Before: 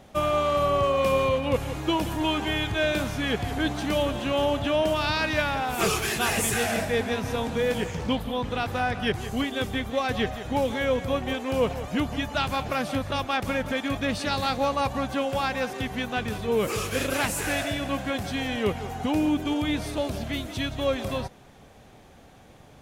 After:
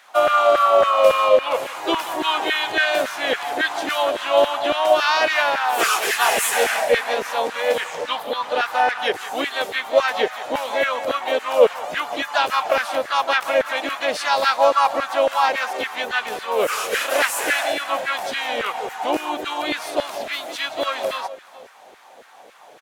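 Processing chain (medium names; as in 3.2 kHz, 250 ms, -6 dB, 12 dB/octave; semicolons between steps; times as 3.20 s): delay 426 ms -21.5 dB; LFO high-pass saw down 3.6 Hz 420–1600 Hz; harmony voices +3 st -6 dB; trim +4 dB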